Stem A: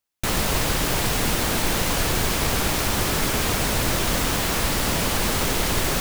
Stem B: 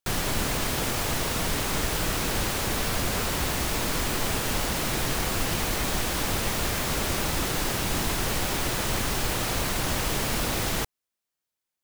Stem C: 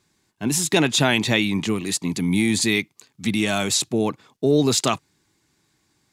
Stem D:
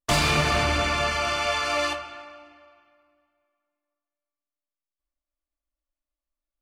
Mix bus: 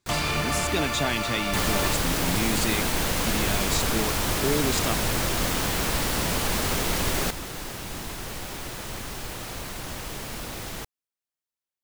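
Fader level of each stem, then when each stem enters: -3.5, -8.0, -9.0, -5.0 dB; 1.30, 0.00, 0.00, 0.00 s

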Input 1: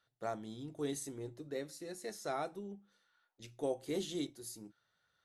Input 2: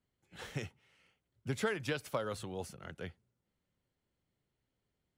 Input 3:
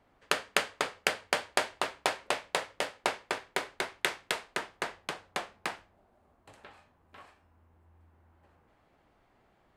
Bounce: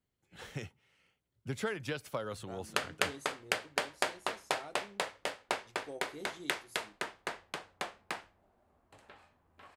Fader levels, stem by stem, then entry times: -9.5, -1.5, -4.0 dB; 2.25, 0.00, 2.45 s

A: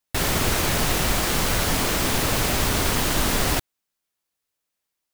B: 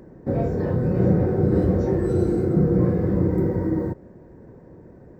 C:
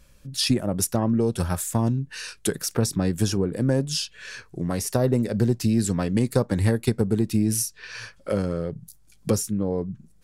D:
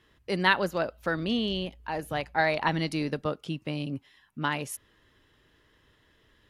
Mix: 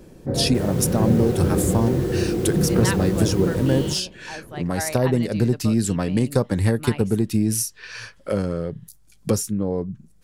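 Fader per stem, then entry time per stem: -18.5, -1.5, +1.5, -5.5 dB; 0.40, 0.00, 0.00, 2.40 s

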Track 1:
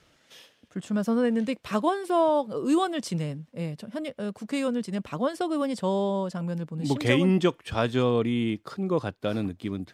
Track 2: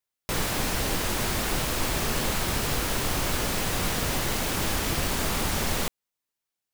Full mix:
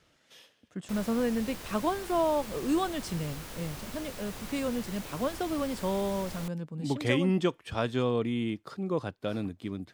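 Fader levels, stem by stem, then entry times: -4.5, -15.5 dB; 0.00, 0.60 s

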